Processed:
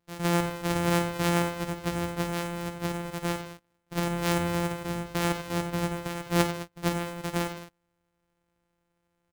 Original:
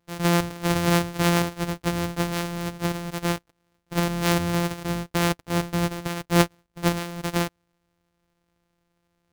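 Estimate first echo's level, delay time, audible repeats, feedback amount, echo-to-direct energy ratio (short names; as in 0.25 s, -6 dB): -11.0 dB, 50 ms, 4, no steady repeat, -6.5 dB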